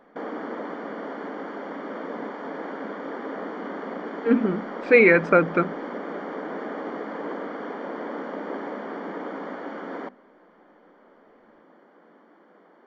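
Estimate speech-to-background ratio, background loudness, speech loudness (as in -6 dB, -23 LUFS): 15.0 dB, -34.0 LUFS, -19.0 LUFS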